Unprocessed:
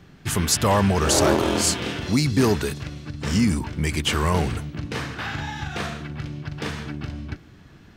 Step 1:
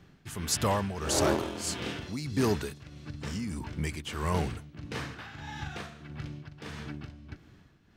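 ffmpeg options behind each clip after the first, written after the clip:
-af "tremolo=f=1.6:d=0.66,volume=0.447"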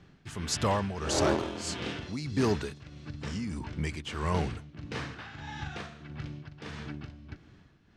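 -af "lowpass=6800"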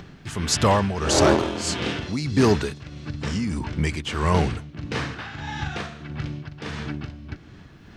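-af "acompressor=mode=upward:threshold=0.00501:ratio=2.5,volume=2.82"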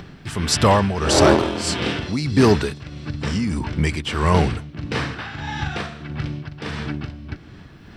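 -af "bandreject=f=6600:w=7.9,volume=1.5"

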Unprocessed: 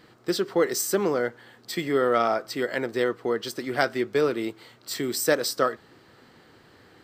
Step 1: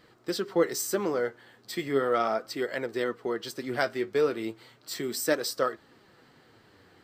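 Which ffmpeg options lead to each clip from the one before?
-af "flanger=delay=1.5:depth=10:regen=57:speed=0.36:shape=triangular"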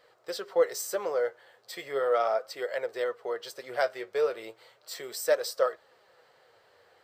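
-af "lowshelf=f=380:t=q:w=3:g=-11.5,volume=0.668"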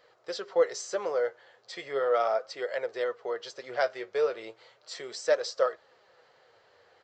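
-af "aresample=16000,aresample=44100"

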